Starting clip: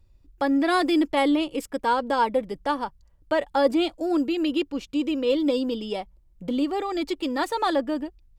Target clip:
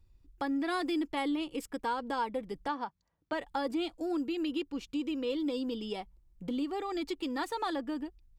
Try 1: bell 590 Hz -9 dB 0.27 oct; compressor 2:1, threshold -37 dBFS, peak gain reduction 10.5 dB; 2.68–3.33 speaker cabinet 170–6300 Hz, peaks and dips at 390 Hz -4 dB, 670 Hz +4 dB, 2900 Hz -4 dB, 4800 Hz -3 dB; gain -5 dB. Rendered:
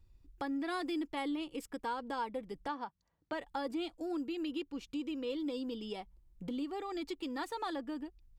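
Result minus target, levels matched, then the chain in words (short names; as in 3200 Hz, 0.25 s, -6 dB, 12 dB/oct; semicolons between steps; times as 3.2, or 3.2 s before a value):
compressor: peak gain reduction +4.5 dB
bell 590 Hz -9 dB 0.27 oct; compressor 2:1, threshold -28 dBFS, peak gain reduction 6 dB; 2.68–3.33 speaker cabinet 170–6300 Hz, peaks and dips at 390 Hz -4 dB, 670 Hz +4 dB, 2900 Hz -4 dB, 4800 Hz -3 dB; gain -5 dB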